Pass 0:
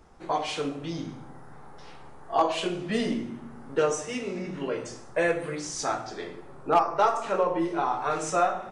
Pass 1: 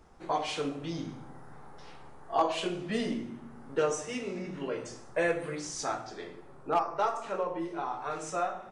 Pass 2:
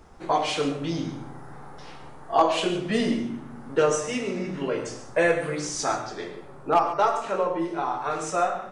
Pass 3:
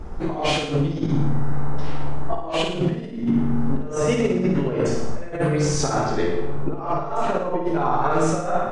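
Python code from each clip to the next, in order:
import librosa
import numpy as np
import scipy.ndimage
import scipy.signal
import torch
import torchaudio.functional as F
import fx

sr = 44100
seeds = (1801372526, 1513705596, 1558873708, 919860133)

y1 = fx.rider(x, sr, range_db=4, speed_s=2.0)
y1 = y1 * 10.0 ** (-6.0 / 20.0)
y2 = fx.rev_gated(y1, sr, seeds[0], gate_ms=160, shape='rising', drr_db=11.0)
y2 = y2 * 10.0 ** (7.0 / 20.0)
y3 = fx.tilt_eq(y2, sr, slope=-2.5)
y3 = fx.over_compress(y3, sr, threshold_db=-27.0, ratio=-0.5)
y3 = fx.room_flutter(y3, sr, wall_m=9.5, rt60_s=0.64)
y3 = y3 * 10.0 ** (4.5 / 20.0)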